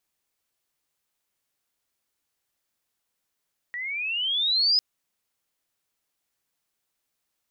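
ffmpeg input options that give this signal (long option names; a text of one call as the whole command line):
ffmpeg -f lavfi -i "aevalsrc='pow(10,(-30+13*t/1.05)/20)*sin(2*PI*1900*1.05/log(5100/1900)*(exp(log(5100/1900)*t/1.05)-1))':duration=1.05:sample_rate=44100" out.wav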